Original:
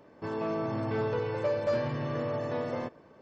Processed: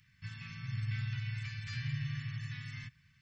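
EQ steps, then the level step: elliptic band-stop 130–2000 Hz, stop band 80 dB; +2.0 dB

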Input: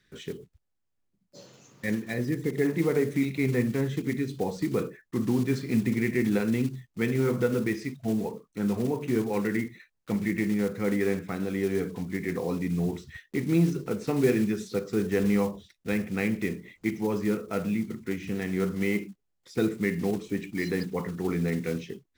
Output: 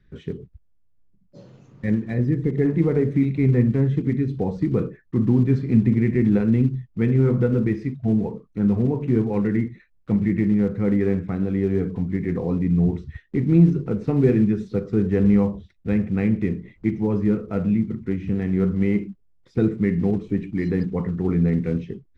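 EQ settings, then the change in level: RIAA curve playback; high shelf 6600 Hz -9.5 dB; 0.0 dB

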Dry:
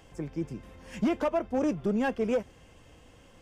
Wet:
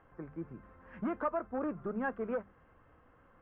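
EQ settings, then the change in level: ladder low-pass 1800 Hz, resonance 45%; bell 1200 Hz +6 dB 0.4 oct; notches 50/100/150/200 Hz; 0.0 dB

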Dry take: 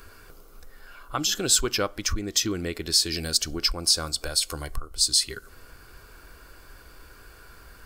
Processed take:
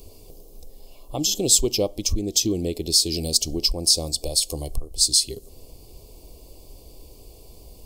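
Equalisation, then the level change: Chebyshev band-stop 660–3500 Hz, order 2; bell 3700 Hz -4.5 dB 1.1 oct; +5.5 dB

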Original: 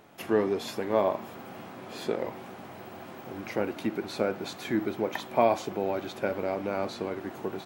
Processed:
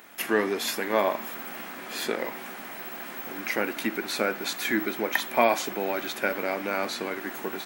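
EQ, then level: RIAA curve recording; bell 240 Hz +8 dB 1.1 oct; bell 1800 Hz +9.5 dB 1.2 oct; 0.0 dB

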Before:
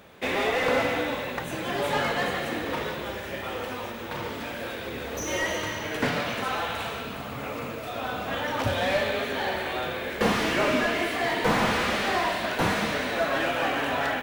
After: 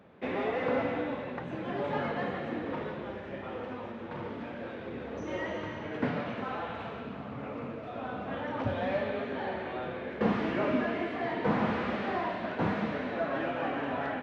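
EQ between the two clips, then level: HPF 84 Hz; tape spacing loss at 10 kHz 37 dB; bell 220 Hz +3.5 dB 1 oct; -3.5 dB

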